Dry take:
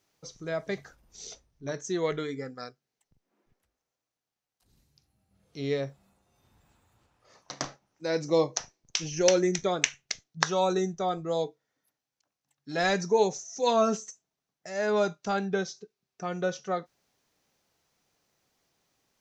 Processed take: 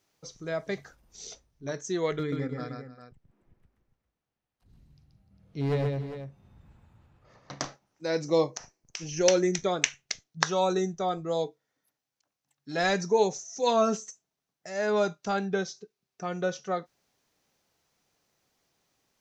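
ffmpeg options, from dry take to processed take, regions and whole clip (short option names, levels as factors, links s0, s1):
-filter_complex "[0:a]asettb=1/sr,asplit=3[s0][s1][s2];[s0]atrim=end=2.194[s3];[s1]atrim=start=2.19:end=7.6,asetpts=PTS-STARTPTS,afade=t=in:d=0.004:c=qsin,afade=t=out:st=5.406:d=0.004:c=qsin,bass=f=250:g=10,treble=f=4000:g=-12,volume=15.8,asoftclip=hard,volume=0.0631,aecho=1:1:130|300|403:0.631|0.141|0.282,atrim=end_sample=238581[s4];[s2]atrim=start=7.596[s5];[s3][s4]acrossfade=d=0.004:c1=hsin:c2=qsin[s6];[s6][s5]acrossfade=d=0.004:c1=qsin:c2=hsin,asettb=1/sr,asplit=3[s7][s8][s9];[s7]atrim=end=8.504[s10];[s8]atrim=start=8.5:end=9.09,asetpts=PTS-STARTPTS,afade=t=in:d=0.004:c=qsin,afade=t=out:st=0.586:d=0.004:c=qsin,equalizer=f=3600:t=o:w=0.58:g=-7.5,acompressor=threshold=0.02:ratio=3:attack=3.2:release=140:knee=1:detection=peak[s11];[s9]atrim=start=9.086[s12];[s10][s11]acrossfade=d=0.004:c1=hsin:c2=qsin[s13];[s13][s12]acrossfade=d=0.004:c1=qsin:c2=hsin"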